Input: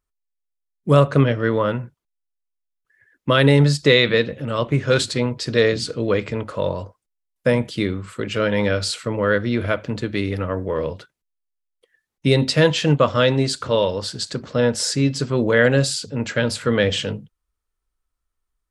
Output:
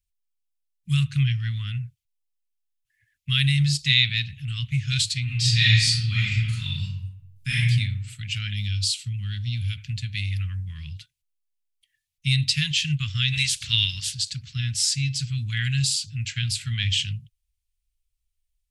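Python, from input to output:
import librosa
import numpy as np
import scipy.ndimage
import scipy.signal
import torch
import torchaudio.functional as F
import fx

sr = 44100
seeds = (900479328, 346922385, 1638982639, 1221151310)

y = fx.reverb_throw(x, sr, start_s=5.24, length_s=2.38, rt60_s=0.85, drr_db=-8.0)
y = fx.band_shelf(y, sr, hz=1400.0, db=-9.5, octaves=1.7, at=(8.53, 9.78))
y = fx.spec_clip(y, sr, under_db=20, at=(13.32, 14.13), fade=0.02)
y = scipy.signal.sosfilt(scipy.signal.cheby1(3, 1.0, [120.0, 2500.0], 'bandstop', fs=sr, output='sos'), y)
y = F.gain(torch.from_numpy(y), 1.5).numpy()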